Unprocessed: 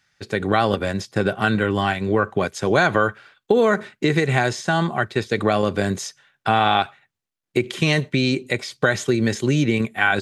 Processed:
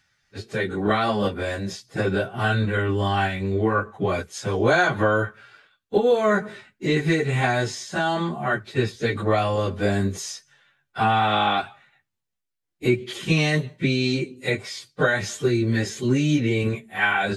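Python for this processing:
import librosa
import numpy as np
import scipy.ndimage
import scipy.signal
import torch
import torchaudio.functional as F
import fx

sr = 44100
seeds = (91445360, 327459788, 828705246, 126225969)

y = fx.low_shelf(x, sr, hz=73.0, db=9.0)
y = fx.stretch_vocoder_free(y, sr, factor=1.7)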